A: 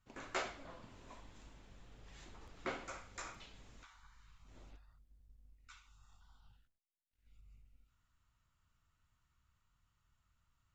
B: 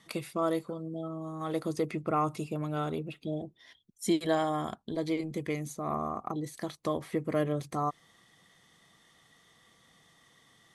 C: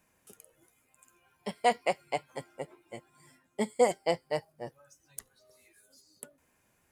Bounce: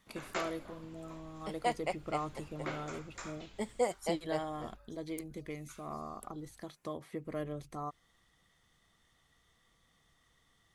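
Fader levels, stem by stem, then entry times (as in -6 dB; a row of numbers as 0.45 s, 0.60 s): +1.0 dB, -9.5 dB, -7.0 dB; 0.00 s, 0.00 s, 0.00 s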